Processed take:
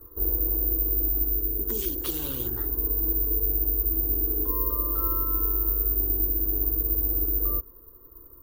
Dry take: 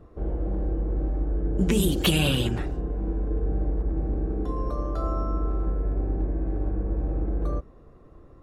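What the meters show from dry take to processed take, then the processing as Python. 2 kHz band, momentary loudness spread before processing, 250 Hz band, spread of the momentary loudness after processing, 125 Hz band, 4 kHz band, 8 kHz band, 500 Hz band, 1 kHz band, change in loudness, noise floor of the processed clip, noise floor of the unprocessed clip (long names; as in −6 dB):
below −15 dB, 8 LU, −8.0 dB, 4 LU, −6.5 dB, below −10 dB, can't be measured, −6.0 dB, −5.0 dB, +4.5 dB, −50 dBFS, −50 dBFS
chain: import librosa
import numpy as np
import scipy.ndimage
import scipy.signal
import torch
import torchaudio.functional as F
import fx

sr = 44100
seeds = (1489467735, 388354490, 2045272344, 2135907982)

y = fx.rider(x, sr, range_db=4, speed_s=0.5)
y = fx.fixed_phaser(y, sr, hz=660.0, stages=6)
y = (np.kron(y[::3], np.eye(3)[0]) * 3)[:len(y)]
y = y * librosa.db_to_amplitude(-4.5)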